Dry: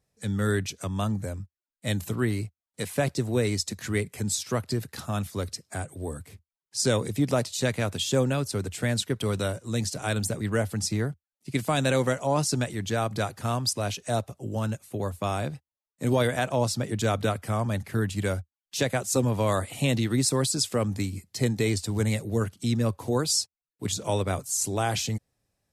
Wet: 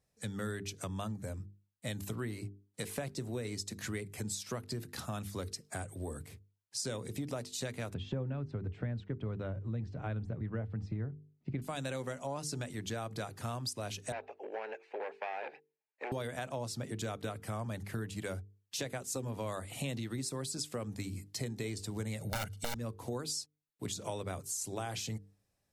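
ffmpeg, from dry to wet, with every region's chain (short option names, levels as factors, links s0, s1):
-filter_complex "[0:a]asettb=1/sr,asplit=3[s0][s1][s2];[s0]atrim=end=7.944[s3];[s1]atrim=start=7.94:end=11.62,asetpts=PTS-STARTPTS,afade=t=in:d=0.004:c=qsin,afade=t=out:st=3.676:d=0.004:c=qsin,lowpass=2300,aemphasis=mode=reproduction:type=bsi[s4];[s2]atrim=start=11.616[s5];[s3][s4]acrossfade=d=0.004:c1=hsin:c2=qsin[s6];[s6][s5]acrossfade=d=0.004:c1=qsin:c2=hsin,asettb=1/sr,asplit=3[s7][s8][s9];[s7]atrim=end=14.124[s10];[s8]atrim=start=14.12:end=16.12,asetpts=PTS-STARTPTS,afade=t=in:d=0.004:c=qsin,afade=t=out:st=1.996:d=0.004:c=qsin,asoftclip=type=hard:threshold=0.0355,highpass=f=410:w=0.5412,highpass=f=410:w=1.3066,equalizer=f=440:t=q:w=4:g=7,equalizer=f=830:t=q:w=4:g=9,equalizer=f=1200:t=q:w=4:g=-7,equalizer=f=1700:t=q:w=4:g=8,equalizer=f=2400:t=q:w=4:g=9,equalizer=f=3500:t=q:w=4:g=-7,lowpass=f=3700:w=0.5412,lowpass=f=3700:w=1.3066[s11];[s9]atrim=start=16.116[s12];[s10][s11]acrossfade=d=0.004:c1=hsin:c2=qsin[s13];[s13][s12]acrossfade=d=0.004:c1=qsin:c2=hsin,asettb=1/sr,asplit=3[s14][s15][s16];[s14]atrim=end=22.214[s17];[s15]atrim=start=22.21:end=22.75,asetpts=PTS-STARTPTS,afade=t=in:d=0.004:c=qsin,afade=t=out:st=0.536:d=0.004:c=qsin,aeval=exprs='(mod(11.9*val(0)+1,2)-1)/11.9':c=same,aecho=1:1:1.4:0.75,atrim=end_sample=23814,acontrast=34[s18];[s16]atrim=start=22.746[s19];[s17][s18]acrossfade=d=0.004:c1=hsin:c2=qsin[s20];[s20][s19]acrossfade=d=0.004:c1=qsin:c2=hsin,bandreject=f=50:t=h:w=6,bandreject=f=100:t=h:w=6,bandreject=f=150:t=h:w=6,bandreject=f=200:t=h:w=6,bandreject=f=250:t=h:w=6,bandreject=f=300:t=h:w=6,bandreject=f=350:t=h:w=6,bandreject=f=400:t=h:w=6,bandreject=f=450:t=h:w=6,acompressor=threshold=0.0224:ratio=5,volume=0.708"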